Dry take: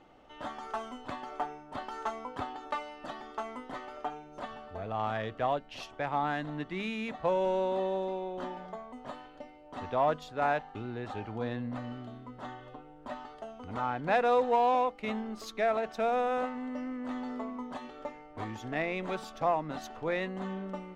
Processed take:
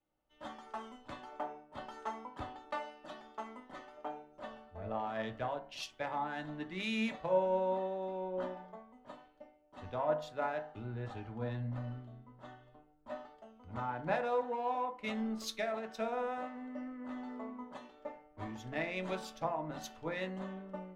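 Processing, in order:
downward compressor 8 to 1, threshold −31 dBFS, peak gain reduction 9.5 dB
on a send at −4.5 dB: convolution reverb RT60 0.55 s, pre-delay 3 ms
on the sum: multiband upward and downward expander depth 100%
level −4 dB

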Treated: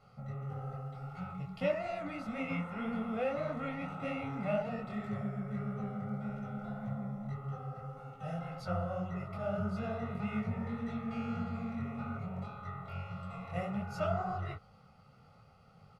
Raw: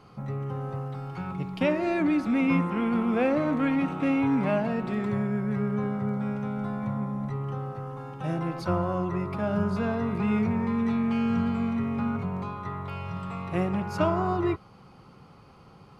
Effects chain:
comb filter 1.5 ms, depth 95%
micro pitch shift up and down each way 60 cents
level −8 dB

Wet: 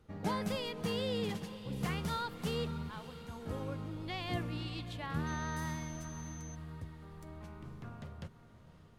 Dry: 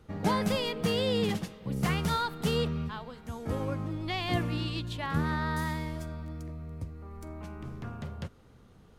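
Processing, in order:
feedback delay with all-pass diffusion 585 ms, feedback 58%, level −14 dB
0:05.26–0:06.54: steady tone 6,200 Hz −44 dBFS
level −7.5 dB

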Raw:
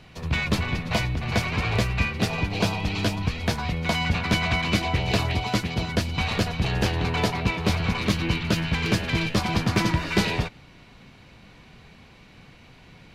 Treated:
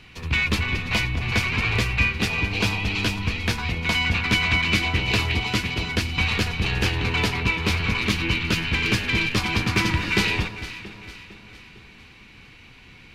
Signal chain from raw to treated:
graphic EQ with 15 bands 160 Hz −6 dB, 630 Hz −10 dB, 2,500 Hz +6 dB
delay that swaps between a low-pass and a high-pass 227 ms, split 1,000 Hz, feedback 68%, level −10.5 dB
level +1.5 dB

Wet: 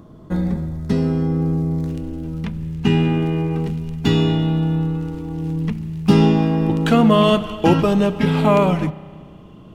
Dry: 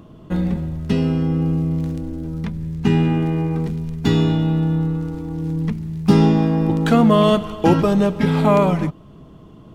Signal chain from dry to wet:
parametric band 2,800 Hz −12 dB 0.37 octaves, from 0:01.88 +6 dB
spring reverb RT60 2 s, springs 32 ms, chirp 30 ms, DRR 16.5 dB

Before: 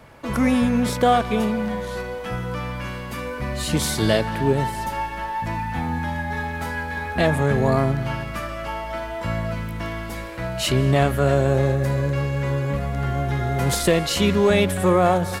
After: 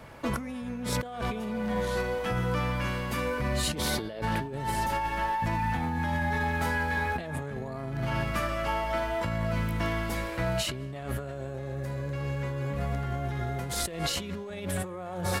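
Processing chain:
0:03.75–0:04.22: graphic EQ with 10 bands 125 Hz −5 dB, 500 Hz +5 dB, 8,000 Hz −9 dB
compressor whose output falls as the input rises −27 dBFS, ratio −1
level −4.5 dB

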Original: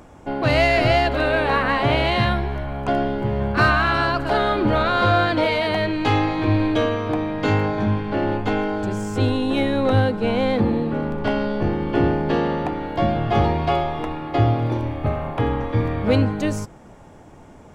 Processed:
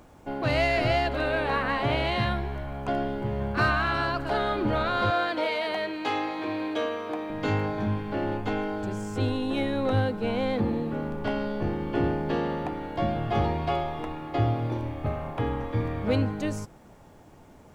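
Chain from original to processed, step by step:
0:05.10–0:07.30: high-pass filter 330 Hz 12 dB per octave
background noise pink −60 dBFS
level −7 dB

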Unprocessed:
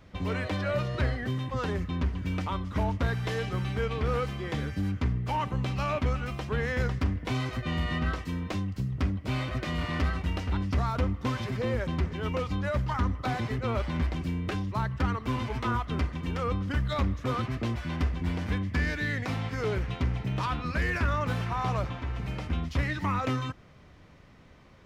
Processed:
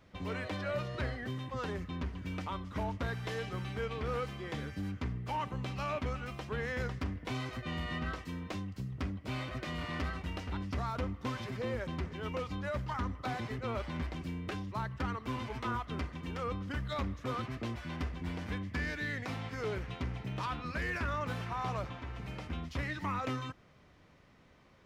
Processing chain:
low-shelf EQ 140 Hz −6 dB
level −5.5 dB

